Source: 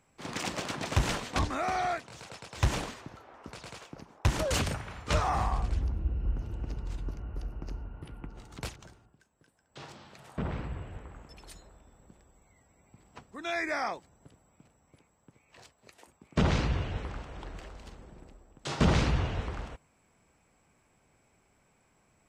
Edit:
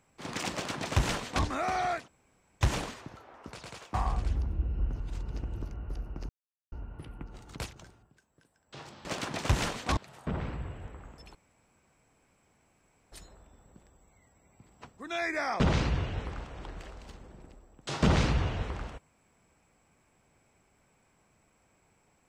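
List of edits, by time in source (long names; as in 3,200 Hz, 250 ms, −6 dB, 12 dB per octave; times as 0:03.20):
0:00.52–0:01.44: duplicate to 0:10.08
0:02.08–0:02.61: fill with room tone
0:03.94–0:05.40: remove
0:06.46–0:07.08: reverse
0:07.75: splice in silence 0.43 s
0:11.46: splice in room tone 1.77 s
0:13.94–0:16.38: remove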